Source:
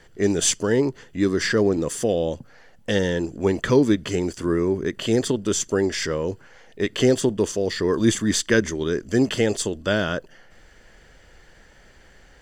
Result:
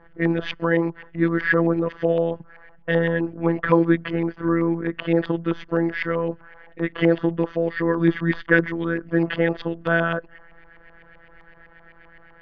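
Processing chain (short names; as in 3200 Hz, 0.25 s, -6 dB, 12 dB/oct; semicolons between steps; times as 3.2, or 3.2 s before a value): inverse Chebyshev low-pass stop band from 8100 Hz, stop band 40 dB; robotiser 167 Hz; LFO low-pass saw up 7.8 Hz 950–2400 Hz; gain +2 dB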